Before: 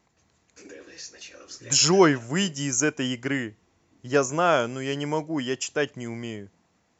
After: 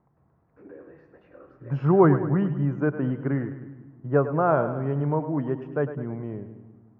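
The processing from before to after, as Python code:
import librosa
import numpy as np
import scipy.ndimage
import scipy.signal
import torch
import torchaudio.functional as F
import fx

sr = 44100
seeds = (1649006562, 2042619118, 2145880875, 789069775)

y = scipy.signal.sosfilt(scipy.signal.butter(4, 1300.0, 'lowpass', fs=sr, output='sos'), x)
y = fx.peak_eq(y, sr, hz=140.0, db=9.5, octaves=0.47)
y = fx.echo_split(y, sr, split_hz=330.0, low_ms=181, high_ms=104, feedback_pct=52, wet_db=-11.0)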